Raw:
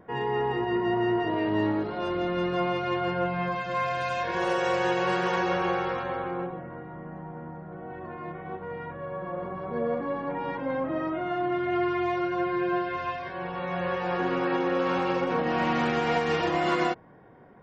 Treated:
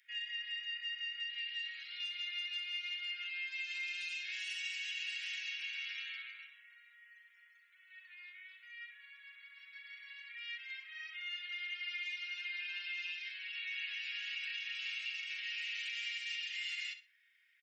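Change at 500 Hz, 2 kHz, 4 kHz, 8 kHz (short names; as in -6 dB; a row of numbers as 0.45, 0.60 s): under -40 dB, -6.0 dB, +1.5 dB, n/a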